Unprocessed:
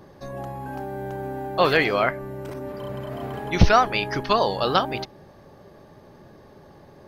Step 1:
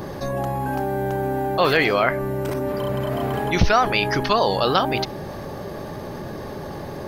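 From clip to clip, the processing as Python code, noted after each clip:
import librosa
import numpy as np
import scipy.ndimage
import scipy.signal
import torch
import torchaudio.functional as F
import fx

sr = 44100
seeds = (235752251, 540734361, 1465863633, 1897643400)

y = fx.high_shelf(x, sr, hz=10000.0, db=6.0)
y = fx.env_flatten(y, sr, amount_pct=50)
y = y * 10.0 ** (-3.5 / 20.0)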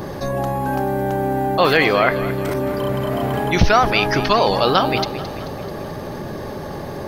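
y = fx.echo_feedback(x, sr, ms=218, feedback_pct=57, wet_db=-14)
y = y * 10.0 ** (3.0 / 20.0)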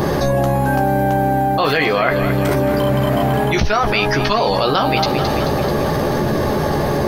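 y = fx.rider(x, sr, range_db=5, speed_s=0.5)
y = fx.doubler(y, sr, ms=14.0, db=-6)
y = fx.env_flatten(y, sr, amount_pct=70)
y = y * 10.0 ** (-3.5 / 20.0)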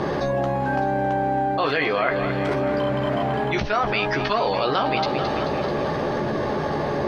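y = scipy.signal.sosfilt(scipy.signal.butter(2, 3900.0, 'lowpass', fs=sr, output='sos'), x)
y = fx.low_shelf(y, sr, hz=130.0, db=-10.5)
y = y + 10.0 ** (-14.5 / 20.0) * np.pad(y, (int(606 * sr / 1000.0), 0))[:len(y)]
y = y * 10.0 ** (-5.0 / 20.0)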